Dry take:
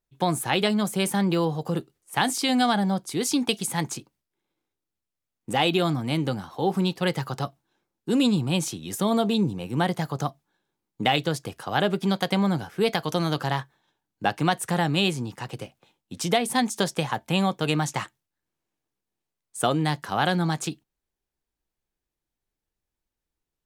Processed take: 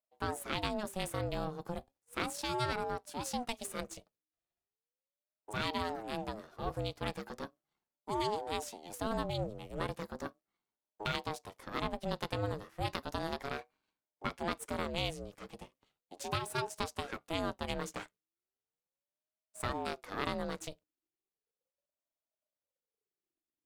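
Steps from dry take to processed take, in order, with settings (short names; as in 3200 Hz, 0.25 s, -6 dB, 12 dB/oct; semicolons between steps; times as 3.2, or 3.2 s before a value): half-wave gain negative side -7 dB; ring modulator with a swept carrier 470 Hz, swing 35%, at 0.36 Hz; gain -8.5 dB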